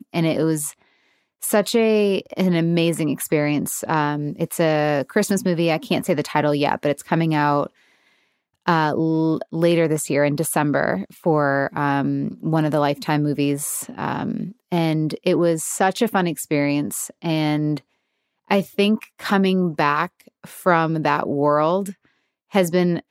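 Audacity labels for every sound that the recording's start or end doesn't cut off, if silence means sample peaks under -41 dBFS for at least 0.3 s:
1.420000	7.670000	sound
8.660000	17.800000	sound
18.500000	21.930000	sound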